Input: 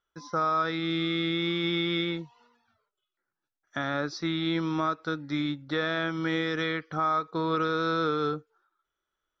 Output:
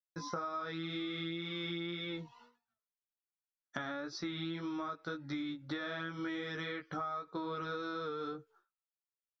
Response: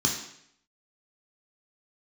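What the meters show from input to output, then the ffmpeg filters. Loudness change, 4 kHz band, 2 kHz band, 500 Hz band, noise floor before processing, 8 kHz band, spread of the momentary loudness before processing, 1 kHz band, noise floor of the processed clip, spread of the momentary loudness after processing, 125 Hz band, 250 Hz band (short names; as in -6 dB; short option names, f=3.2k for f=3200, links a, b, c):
-11.0 dB, -10.5 dB, -10.5 dB, -11.5 dB, under -85 dBFS, n/a, 5 LU, -12.0 dB, under -85 dBFS, 4 LU, -11.0 dB, -10.5 dB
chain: -af "agate=range=-33dB:threshold=-56dB:ratio=3:detection=peak,flanger=delay=15.5:depth=2.2:speed=1.9,acompressor=threshold=-41dB:ratio=10,volume=4.5dB"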